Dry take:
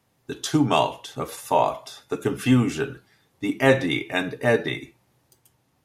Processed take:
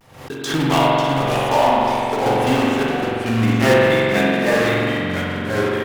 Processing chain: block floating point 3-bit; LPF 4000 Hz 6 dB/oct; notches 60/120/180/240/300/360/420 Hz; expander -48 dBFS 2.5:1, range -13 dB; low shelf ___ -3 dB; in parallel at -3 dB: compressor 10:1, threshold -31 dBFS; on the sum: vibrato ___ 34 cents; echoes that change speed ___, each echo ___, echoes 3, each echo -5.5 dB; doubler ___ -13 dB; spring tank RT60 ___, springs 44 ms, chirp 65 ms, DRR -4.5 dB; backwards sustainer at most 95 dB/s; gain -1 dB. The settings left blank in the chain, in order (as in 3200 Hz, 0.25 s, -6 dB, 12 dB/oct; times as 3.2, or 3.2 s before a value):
210 Hz, 0.46 Hz, 0.489 s, -2 st, 36 ms, 2.7 s